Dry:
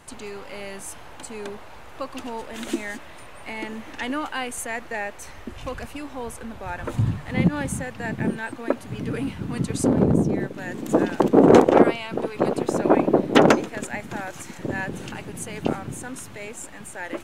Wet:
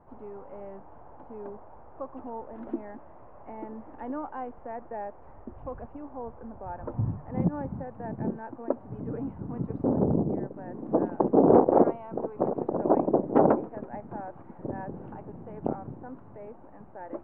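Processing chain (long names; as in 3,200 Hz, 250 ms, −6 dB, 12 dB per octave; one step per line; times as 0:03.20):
transistor ladder low-pass 1,100 Hz, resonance 30%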